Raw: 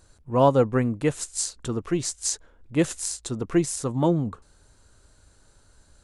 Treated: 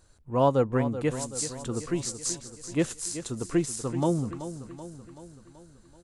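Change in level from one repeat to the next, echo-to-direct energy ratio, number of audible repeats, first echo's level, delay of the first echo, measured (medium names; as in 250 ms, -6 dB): -5.0 dB, -10.5 dB, 5, -12.0 dB, 381 ms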